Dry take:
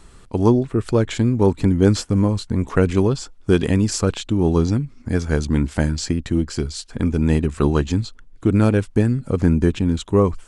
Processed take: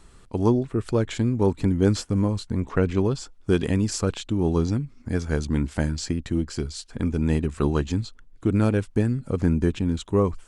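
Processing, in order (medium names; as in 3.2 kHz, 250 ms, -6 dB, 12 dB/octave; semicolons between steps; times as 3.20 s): 2.60–3.05 s: distance through air 70 m; trim -5 dB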